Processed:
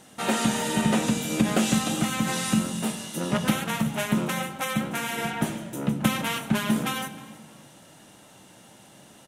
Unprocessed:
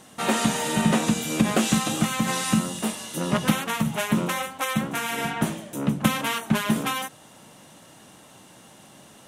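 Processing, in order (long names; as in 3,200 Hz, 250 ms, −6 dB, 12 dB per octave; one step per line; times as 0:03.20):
notch filter 1,100 Hz, Q 12
echo with shifted repeats 312 ms, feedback 35%, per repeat +38 Hz, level −22 dB
on a send at −11 dB: convolution reverb RT60 1.3 s, pre-delay 9 ms
on the sum: level −2 dB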